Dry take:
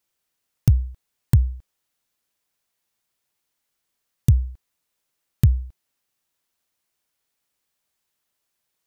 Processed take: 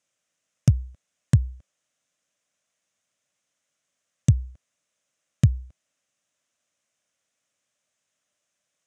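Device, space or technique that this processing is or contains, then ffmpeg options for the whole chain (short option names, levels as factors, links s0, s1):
car door speaker: -af "highpass=110,equalizer=f=390:t=q:w=4:g=-9,equalizer=f=590:t=q:w=4:g=7,equalizer=f=890:t=q:w=4:g=-8,equalizer=f=4400:t=q:w=4:g=-8,equalizer=f=6500:t=q:w=4:g=5,lowpass=f=8600:w=0.5412,lowpass=f=8600:w=1.3066,volume=1.26"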